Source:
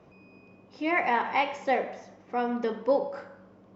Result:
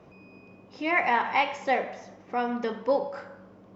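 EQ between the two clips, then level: dynamic EQ 360 Hz, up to -5 dB, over -41 dBFS, Q 0.78; +3.0 dB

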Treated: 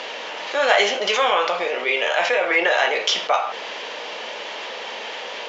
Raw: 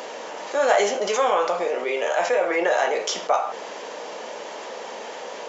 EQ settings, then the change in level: LPF 4900 Hz 12 dB/oct; bell 3100 Hz +14 dB 2.1 oct; -2.0 dB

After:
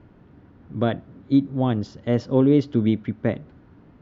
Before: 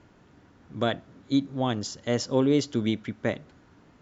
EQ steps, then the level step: air absorption 230 m; low shelf 470 Hz +8.5 dB; 0.0 dB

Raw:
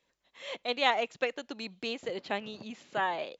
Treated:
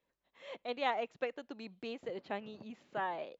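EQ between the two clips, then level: air absorption 97 m; bell 3800 Hz -6 dB 2.3 oct; -4.5 dB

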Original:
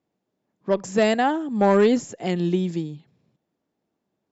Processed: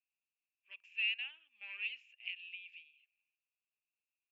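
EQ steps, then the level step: Butterworth band-pass 2600 Hz, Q 6.7; +3.0 dB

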